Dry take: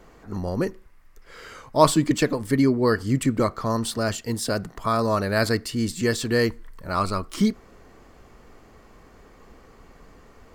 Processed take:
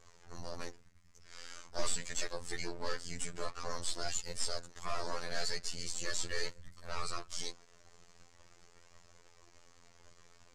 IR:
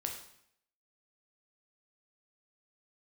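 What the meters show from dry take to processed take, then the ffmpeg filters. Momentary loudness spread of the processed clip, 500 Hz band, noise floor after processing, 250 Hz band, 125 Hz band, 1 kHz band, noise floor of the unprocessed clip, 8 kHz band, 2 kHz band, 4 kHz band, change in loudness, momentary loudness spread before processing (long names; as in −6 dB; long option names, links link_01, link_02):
13 LU, −20.0 dB, −61 dBFS, −28.5 dB, −23.5 dB, −17.5 dB, −52 dBFS, −5.5 dB, −13.0 dB, −7.5 dB, −16.0 dB, 10 LU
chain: -filter_complex "[0:a]afftfilt=real='re*(1-between(b*sr/4096,180,370))':imag='im*(1-between(b*sr/4096,180,370))':win_size=4096:overlap=0.75,highshelf=frequency=2500:gain=11.5,acrossover=split=410|640|3700[link_01][link_02][link_03][link_04];[link_01]alimiter=level_in=3dB:limit=-24dB:level=0:latency=1:release=218,volume=-3dB[link_05];[link_05][link_02][link_03][link_04]amix=inputs=4:normalize=0,afftfilt=real='hypot(re,im)*cos(2*PI*random(0))':imag='hypot(re,im)*sin(2*PI*random(1))':win_size=512:overlap=0.75,aeval=exprs='max(val(0),0)':channel_layout=same,flanger=delay=1.4:depth=3.7:regen=67:speed=0.44:shape=triangular,afftfilt=real='hypot(re,im)*cos(PI*b)':imag='0':win_size=2048:overlap=0.75,asoftclip=type=tanh:threshold=-25.5dB,lowpass=frequency=6900:width_type=q:width=1.9,volume=4dB"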